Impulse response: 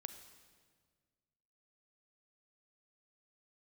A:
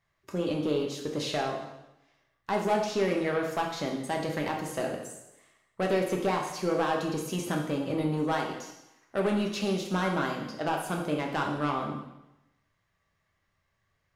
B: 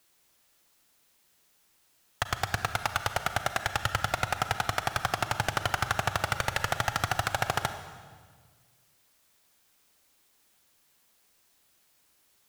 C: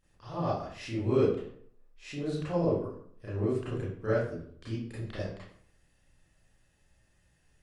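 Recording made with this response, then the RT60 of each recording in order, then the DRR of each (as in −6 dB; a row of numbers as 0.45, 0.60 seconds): B; 0.95, 1.7, 0.60 seconds; 0.0, 9.0, −11.0 decibels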